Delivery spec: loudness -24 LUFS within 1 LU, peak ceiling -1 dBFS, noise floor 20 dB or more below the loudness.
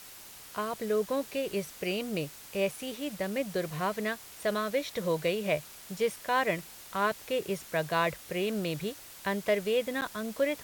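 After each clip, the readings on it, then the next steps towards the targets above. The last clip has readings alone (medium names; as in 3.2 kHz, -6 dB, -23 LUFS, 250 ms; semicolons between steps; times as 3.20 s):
dropouts 1; longest dropout 9.1 ms; noise floor -49 dBFS; noise floor target -52 dBFS; loudness -32.0 LUFS; peak level -14.0 dBFS; loudness target -24.0 LUFS
-> interpolate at 10.01 s, 9.1 ms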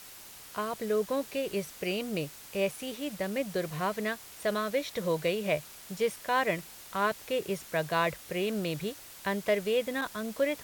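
dropouts 0; noise floor -49 dBFS; noise floor target -52 dBFS
-> noise reduction 6 dB, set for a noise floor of -49 dBFS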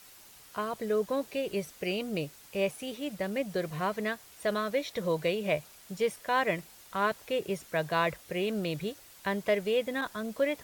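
noise floor -54 dBFS; loudness -32.0 LUFS; peak level -14.0 dBFS; loudness target -24.0 LUFS
-> trim +8 dB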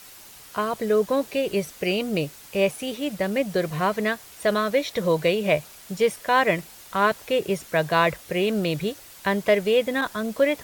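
loudness -24.0 LUFS; peak level -6.0 dBFS; noise floor -46 dBFS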